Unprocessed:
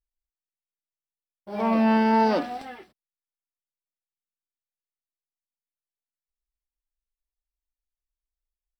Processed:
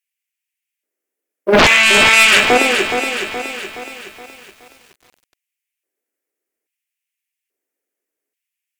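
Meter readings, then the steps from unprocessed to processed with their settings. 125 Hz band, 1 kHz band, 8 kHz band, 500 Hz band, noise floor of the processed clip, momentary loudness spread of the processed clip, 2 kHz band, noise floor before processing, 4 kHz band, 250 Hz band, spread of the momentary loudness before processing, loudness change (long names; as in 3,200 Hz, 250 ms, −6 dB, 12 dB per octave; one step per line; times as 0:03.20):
+8.0 dB, +7.5 dB, can't be measured, +11.0 dB, −83 dBFS, 19 LU, +25.0 dB, below −85 dBFS, +28.5 dB, +1.0 dB, 16 LU, +11.5 dB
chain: graphic EQ with 10 bands 125 Hz −8 dB, 250 Hz +7 dB, 500 Hz +5 dB, 1,000 Hz −9 dB, 2,000 Hz +6 dB, 4,000 Hz −12 dB
in parallel at −1 dB: brickwall limiter −21 dBFS, peak gain reduction 11.5 dB
on the sum: harmonic generator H 7 −19 dB, 8 −27 dB, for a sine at −7.5 dBFS
auto-filter high-pass square 0.6 Hz 370–2,600 Hz
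sine wavefolder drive 16 dB, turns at −8 dBFS
feedback echo at a low word length 421 ms, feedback 55%, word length 7 bits, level −7 dB
level +2.5 dB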